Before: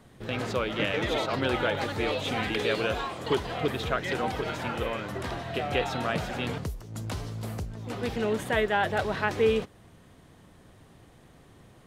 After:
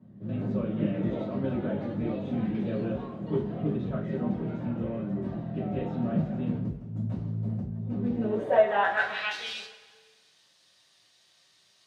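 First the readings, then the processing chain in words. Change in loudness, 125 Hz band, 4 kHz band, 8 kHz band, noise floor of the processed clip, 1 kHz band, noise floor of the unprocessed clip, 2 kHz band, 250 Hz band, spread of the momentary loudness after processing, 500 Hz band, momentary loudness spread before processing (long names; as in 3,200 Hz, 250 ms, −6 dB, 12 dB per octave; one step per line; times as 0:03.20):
−1.0 dB, +3.0 dB, −8.5 dB, below −10 dB, −64 dBFS, −3.0 dB, −55 dBFS, −3.5 dB, +4.5 dB, 9 LU, −2.0 dB, 10 LU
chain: band-pass filter sweep 210 Hz → 4,800 Hz, 0:08.07–0:09.45
coupled-rooms reverb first 0.29 s, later 1.6 s, from −18 dB, DRR −8 dB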